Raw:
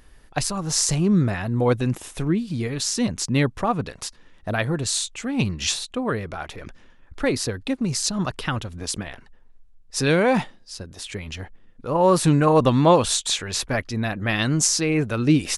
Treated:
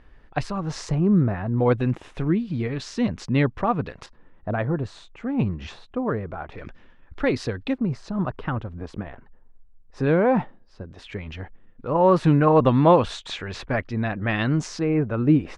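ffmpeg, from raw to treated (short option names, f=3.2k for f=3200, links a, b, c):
-af "asetnsamples=n=441:p=0,asendcmd='0.89 lowpass f 1300;1.58 lowpass f 2600;4.06 lowpass f 1300;6.52 lowpass f 3200;7.78 lowpass f 1300;10.92 lowpass f 2300;14.79 lowpass f 1300',lowpass=2.4k"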